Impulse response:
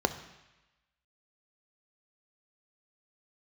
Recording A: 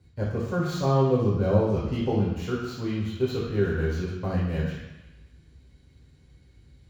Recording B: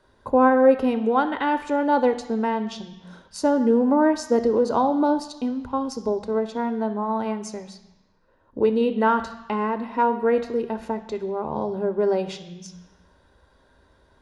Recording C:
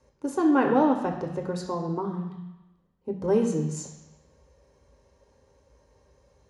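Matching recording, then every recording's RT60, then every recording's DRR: B; 1.0 s, 1.0 s, 1.0 s; -7.0 dB, 9.5 dB, 2.5 dB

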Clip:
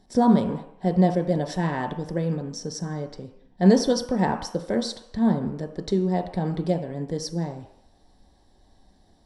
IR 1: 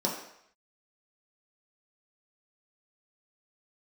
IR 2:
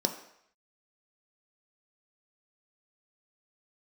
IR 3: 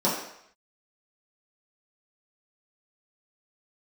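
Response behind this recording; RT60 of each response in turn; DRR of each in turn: 2; 0.70 s, 0.70 s, 0.70 s; -3.5 dB, 4.5 dB, -9.0 dB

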